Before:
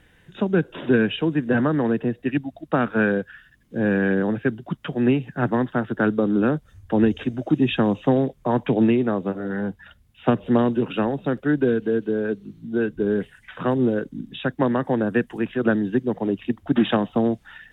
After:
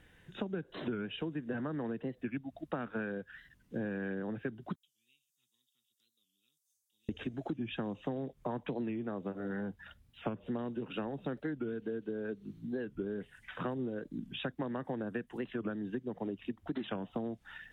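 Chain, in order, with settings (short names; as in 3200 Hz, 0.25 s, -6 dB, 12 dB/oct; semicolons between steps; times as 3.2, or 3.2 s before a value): 4.76–7.09 inverse Chebyshev high-pass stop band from 1700 Hz, stop band 60 dB; compressor 10:1, threshold -28 dBFS, peak gain reduction 15 dB; record warp 45 rpm, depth 160 cents; gain -6 dB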